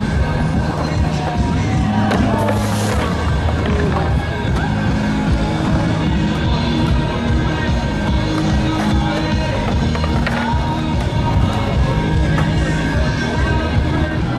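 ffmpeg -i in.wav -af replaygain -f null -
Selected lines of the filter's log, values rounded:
track_gain = +1.9 dB
track_peak = 0.584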